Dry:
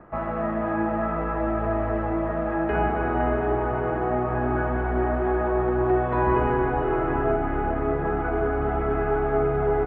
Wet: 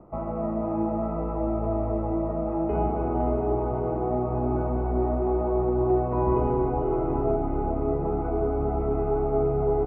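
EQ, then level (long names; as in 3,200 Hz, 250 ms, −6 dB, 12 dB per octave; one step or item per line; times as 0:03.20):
moving average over 26 samples
0.0 dB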